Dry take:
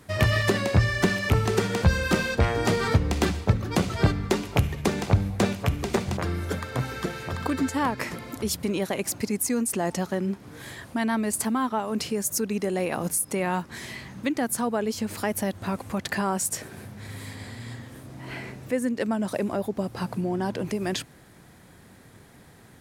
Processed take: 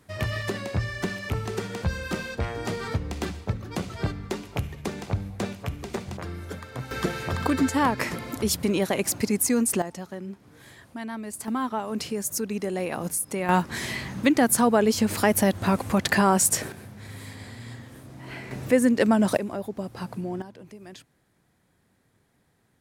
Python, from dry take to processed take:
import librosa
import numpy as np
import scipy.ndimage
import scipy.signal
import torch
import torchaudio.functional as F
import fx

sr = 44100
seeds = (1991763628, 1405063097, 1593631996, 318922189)

y = fx.gain(x, sr, db=fx.steps((0.0, -7.0), (6.91, 3.0), (9.82, -9.0), (11.48, -2.0), (13.49, 6.5), (16.72, -2.0), (18.51, 6.5), (19.37, -4.0), (20.42, -16.0)))